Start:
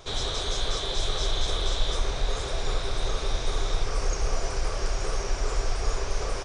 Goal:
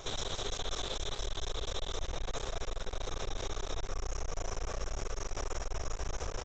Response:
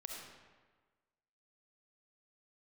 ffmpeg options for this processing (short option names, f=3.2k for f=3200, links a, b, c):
-filter_complex "[0:a]asuperstop=centerf=4600:order=4:qfactor=3.6,highshelf=f=2.2k:g=-6.5,bandreject=f=60:t=h:w=6,bandreject=f=120:t=h:w=6,bandreject=f=180:t=h:w=6,bandreject=f=240:t=h:w=6,bandreject=f=300:t=h:w=6,bandreject=f=360:t=h:w=6,bandreject=f=420:t=h:w=6,asplit=2[a][b];[b]adelay=194,lowpass=f=2k:p=1,volume=-5dB,asplit=2[c][d];[d]adelay=194,lowpass=f=2k:p=1,volume=0.38,asplit=2[e][f];[f]adelay=194,lowpass=f=2k:p=1,volume=0.38,asplit=2[g][h];[h]adelay=194,lowpass=f=2k:p=1,volume=0.38,asplit=2[i][j];[j]adelay=194,lowpass=f=2k:p=1,volume=0.38[k];[a][c][e][g][i][k]amix=inputs=6:normalize=0,alimiter=level_in=5.5dB:limit=-24dB:level=0:latency=1:release=91,volume=-5.5dB,bass=f=250:g=-1,treble=f=4k:g=9,aresample=16000,aeval=exprs='clip(val(0),-1,0.00316)':c=same,aresample=44100,volume=4dB"